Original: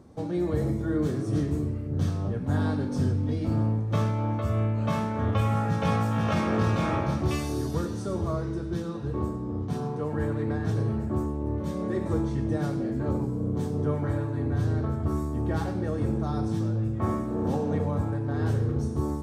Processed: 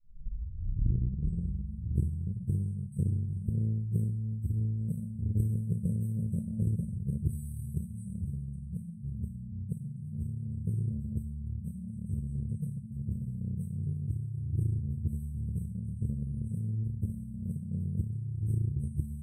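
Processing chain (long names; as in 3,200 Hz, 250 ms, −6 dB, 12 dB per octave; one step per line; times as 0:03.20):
turntable start at the beginning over 2.40 s
brick-wall band-stop 220–7,900 Hz
harmonic generator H 3 −16 dB, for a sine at −15.5 dBFS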